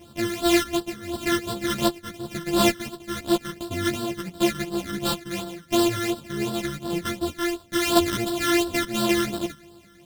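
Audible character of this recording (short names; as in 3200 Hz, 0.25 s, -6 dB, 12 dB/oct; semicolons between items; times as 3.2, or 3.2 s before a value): a buzz of ramps at a fixed pitch in blocks of 128 samples; phasing stages 12, 2.8 Hz, lowest notch 760–2200 Hz; tremolo saw down 0.88 Hz, depth 60%; a shimmering, thickened sound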